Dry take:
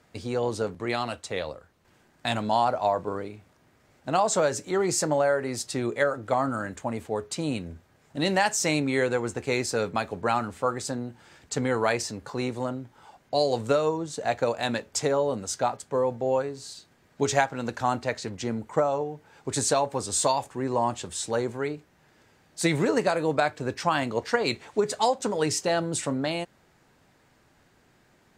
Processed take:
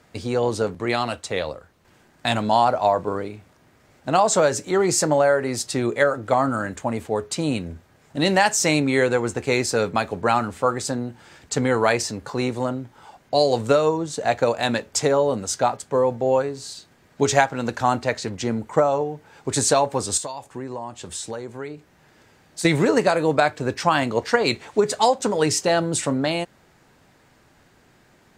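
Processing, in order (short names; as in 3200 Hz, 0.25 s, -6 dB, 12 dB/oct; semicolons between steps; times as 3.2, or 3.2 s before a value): 20.17–22.65 compressor 10:1, threshold -34 dBFS, peak gain reduction 15.5 dB; gain +5.5 dB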